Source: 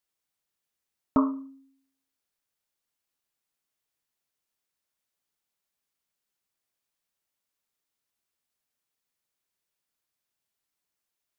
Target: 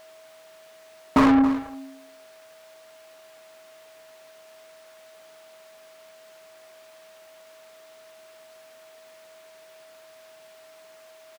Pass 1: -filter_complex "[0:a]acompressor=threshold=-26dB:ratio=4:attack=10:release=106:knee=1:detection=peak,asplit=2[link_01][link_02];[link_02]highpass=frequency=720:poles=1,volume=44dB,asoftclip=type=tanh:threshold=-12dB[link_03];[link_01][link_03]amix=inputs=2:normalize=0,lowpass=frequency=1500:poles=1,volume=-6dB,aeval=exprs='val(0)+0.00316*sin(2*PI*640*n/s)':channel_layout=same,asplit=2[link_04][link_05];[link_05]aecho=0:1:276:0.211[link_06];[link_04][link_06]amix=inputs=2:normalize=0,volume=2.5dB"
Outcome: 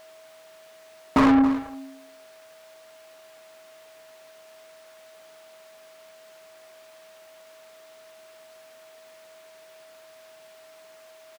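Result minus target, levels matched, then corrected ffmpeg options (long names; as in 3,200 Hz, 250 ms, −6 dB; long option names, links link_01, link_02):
downward compressor: peak gain reduction +7.5 dB
-filter_complex "[0:a]asplit=2[link_01][link_02];[link_02]highpass=frequency=720:poles=1,volume=44dB,asoftclip=type=tanh:threshold=-12dB[link_03];[link_01][link_03]amix=inputs=2:normalize=0,lowpass=frequency=1500:poles=1,volume=-6dB,aeval=exprs='val(0)+0.00316*sin(2*PI*640*n/s)':channel_layout=same,asplit=2[link_04][link_05];[link_05]aecho=0:1:276:0.211[link_06];[link_04][link_06]amix=inputs=2:normalize=0,volume=2.5dB"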